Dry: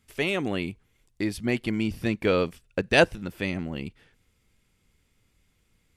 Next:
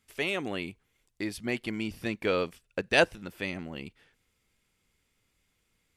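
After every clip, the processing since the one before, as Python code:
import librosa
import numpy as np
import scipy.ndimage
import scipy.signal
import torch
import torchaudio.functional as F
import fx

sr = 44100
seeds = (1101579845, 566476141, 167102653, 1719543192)

y = fx.low_shelf(x, sr, hz=280.0, db=-8.0)
y = y * 10.0 ** (-2.5 / 20.0)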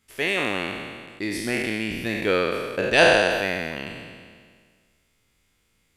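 y = fx.spec_trails(x, sr, decay_s=1.82)
y = y * 10.0 ** (3.0 / 20.0)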